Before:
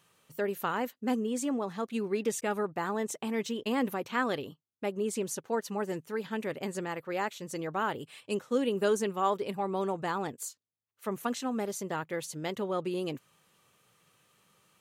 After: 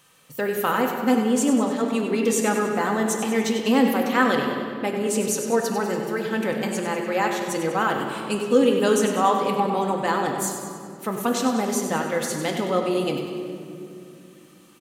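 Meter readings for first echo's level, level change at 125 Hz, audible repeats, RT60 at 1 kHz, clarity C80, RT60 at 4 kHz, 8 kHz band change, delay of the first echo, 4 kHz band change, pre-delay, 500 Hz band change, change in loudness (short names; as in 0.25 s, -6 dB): -9.5 dB, +9.5 dB, 2, 2.3 s, 4.0 dB, 1.6 s, +12.0 dB, 97 ms, +11.0 dB, 4 ms, +9.5 dB, +10.0 dB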